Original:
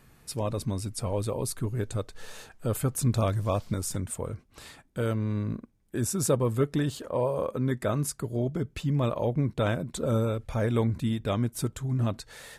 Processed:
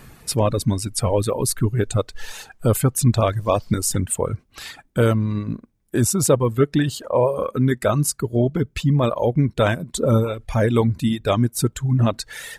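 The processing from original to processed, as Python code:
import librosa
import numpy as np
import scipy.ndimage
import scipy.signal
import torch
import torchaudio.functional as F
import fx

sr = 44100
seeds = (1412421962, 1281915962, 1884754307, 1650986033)

p1 = fx.dereverb_blind(x, sr, rt60_s=1.9)
p2 = fx.rider(p1, sr, range_db=10, speed_s=0.5)
p3 = p1 + (p2 * librosa.db_to_amplitude(0.0))
y = p3 * librosa.db_to_amplitude(4.5)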